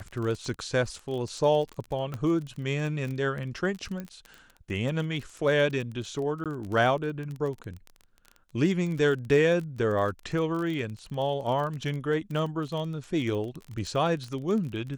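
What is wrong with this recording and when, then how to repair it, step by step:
surface crackle 27 per second −33 dBFS
0:02.14: click −21 dBFS
0:04.00: click −23 dBFS
0:06.44–0:06.46: drop-out 17 ms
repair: click removal
repair the gap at 0:06.44, 17 ms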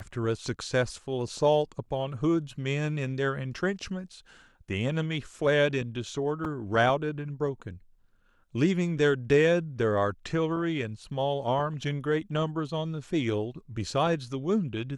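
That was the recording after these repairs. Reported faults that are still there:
0:02.14: click
0:04.00: click

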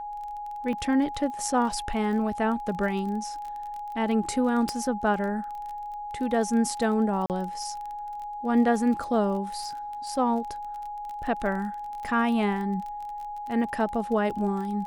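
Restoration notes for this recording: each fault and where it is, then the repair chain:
surface crackle 27 per second −34 dBFS
whistle 830 Hz −33 dBFS
0:00.73: drop-out 2.2 ms
0:04.69: click −15 dBFS
0:07.26–0:07.30: drop-out 38 ms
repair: click removal
notch filter 830 Hz, Q 30
repair the gap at 0:00.73, 2.2 ms
repair the gap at 0:07.26, 38 ms

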